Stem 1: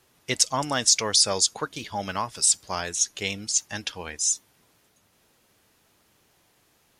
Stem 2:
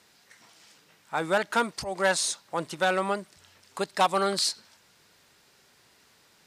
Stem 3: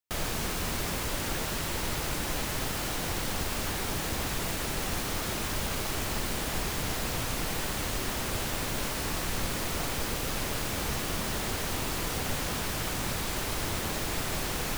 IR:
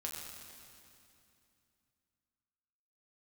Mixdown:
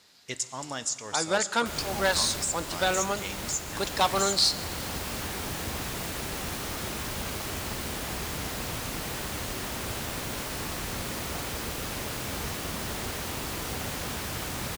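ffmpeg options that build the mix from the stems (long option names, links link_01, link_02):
-filter_complex "[0:a]equalizer=frequency=7200:width=4.5:gain=12.5,acompressor=threshold=-20dB:ratio=6,volume=-10.5dB,asplit=3[link_01][link_02][link_03];[link_02]volume=-8.5dB[link_04];[1:a]equalizer=frequency=4300:width_type=o:width=0.88:gain=7.5,volume=-3.5dB,asplit=2[link_05][link_06];[link_06]volume=-12dB[link_07];[2:a]highpass=43,adelay=1550,volume=-3dB,asplit=2[link_08][link_09];[link_09]volume=-11dB[link_10];[link_03]apad=whole_len=719726[link_11];[link_08][link_11]sidechaincompress=threshold=-35dB:ratio=8:attack=28:release=873[link_12];[3:a]atrim=start_sample=2205[link_13];[link_04][link_07][link_10]amix=inputs=3:normalize=0[link_14];[link_14][link_13]afir=irnorm=-1:irlink=0[link_15];[link_01][link_05][link_12][link_15]amix=inputs=4:normalize=0"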